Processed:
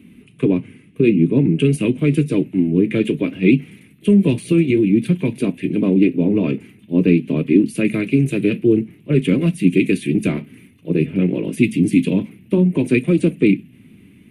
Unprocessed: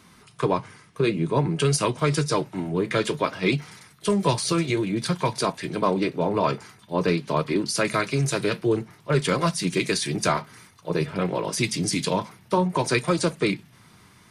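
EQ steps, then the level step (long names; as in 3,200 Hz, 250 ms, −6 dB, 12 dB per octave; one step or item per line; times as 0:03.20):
drawn EQ curve 140 Hz 0 dB, 260 Hz +12 dB, 940 Hz −22 dB, 1,400 Hz −19 dB, 2,600 Hz +2 dB, 5,100 Hz −27 dB, 11,000 Hz −7 dB
+5.0 dB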